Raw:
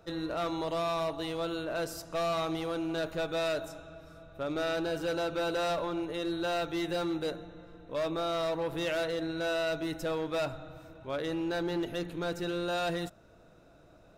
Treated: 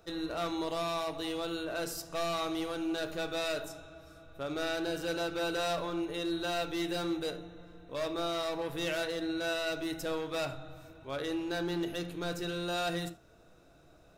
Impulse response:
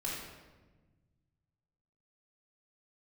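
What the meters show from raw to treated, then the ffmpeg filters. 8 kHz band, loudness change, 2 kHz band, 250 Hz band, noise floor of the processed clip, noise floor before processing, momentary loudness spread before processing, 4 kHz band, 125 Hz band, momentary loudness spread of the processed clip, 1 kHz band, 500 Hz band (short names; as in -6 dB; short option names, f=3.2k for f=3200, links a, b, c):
+3.0 dB, -1.5 dB, -0.5 dB, -1.0 dB, -60 dBFS, -58 dBFS, 8 LU, +1.5 dB, -2.5 dB, 10 LU, -2.0 dB, -3.0 dB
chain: -filter_complex "[0:a]highshelf=f=3.3k:g=9,asplit=2[a][b];[1:a]atrim=start_sample=2205,atrim=end_sample=3969,highshelf=f=5.4k:g=-10.5[c];[b][c]afir=irnorm=-1:irlink=0,volume=-6dB[d];[a][d]amix=inputs=2:normalize=0,volume=-5.5dB"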